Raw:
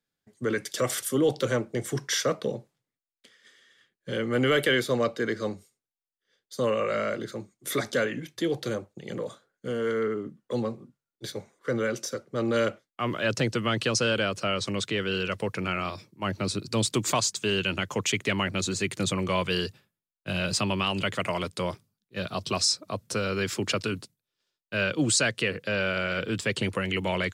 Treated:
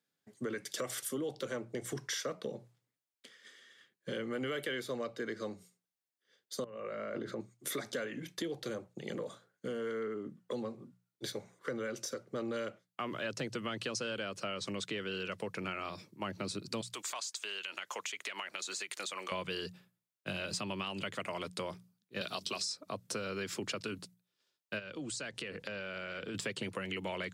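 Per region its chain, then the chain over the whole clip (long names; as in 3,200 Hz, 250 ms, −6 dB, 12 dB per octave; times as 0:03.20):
0:06.64–0:07.41: low-pass filter 1,700 Hz 6 dB per octave + compressor whose output falls as the input rises −36 dBFS
0:16.81–0:19.32: high-pass filter 790 Hz + downward compressor 10 to 1, threshold −31 dBFS
0:22.21–0:22.83: low-shelf EQ 190 Hz −7.5 dB + mains-hum notches 50/100/150/200/250/300/350/400 Hz + multiband upward and downward compressor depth 70%
0:24.78–0:26.34: low-pass filter 11,000 Hz + downward compressor, threshold −36 dBFS + hum with harmonics 50 Hz, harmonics 19, −59 dBFS −8 dB per octave
whole clip: high-pass filter 130 Hz; mains-hum notches 60/120/180 Hz; downward compressor 4 to 1, threshold −37 dBFS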